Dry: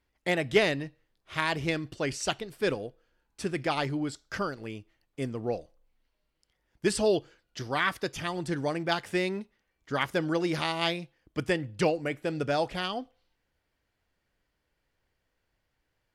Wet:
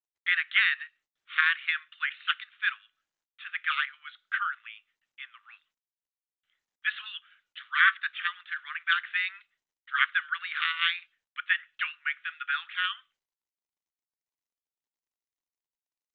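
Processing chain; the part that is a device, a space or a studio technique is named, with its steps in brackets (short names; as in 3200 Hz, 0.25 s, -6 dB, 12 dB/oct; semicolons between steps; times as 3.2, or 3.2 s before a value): dynamic EQ 1600 Hz, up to +7 dB, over -46 dBFS, Q 2.2; steep high-pass 1200 Hz 72 dB/oct; high shelf 9100 Hz +4 dB; gate with hold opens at -58 dBFS; Bluetooth headset (HPF 130 Hz 6 dB/oct; downsampling 8000 Hz; gain +3 dB; SBC 64 kbps 16000 Hz)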